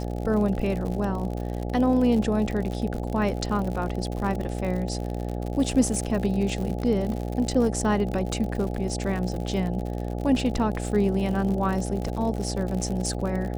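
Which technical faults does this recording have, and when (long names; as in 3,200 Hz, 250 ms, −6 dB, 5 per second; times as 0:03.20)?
mains buzz 60 Hz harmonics 14 −30 dBFS
surface crackle 71 per second −30 dBFS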